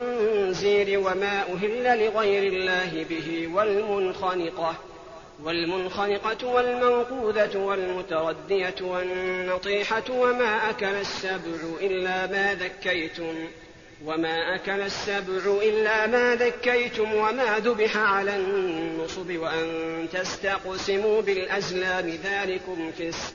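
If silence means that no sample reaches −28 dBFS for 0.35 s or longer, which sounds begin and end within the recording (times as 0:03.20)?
0:05.46–0:13.45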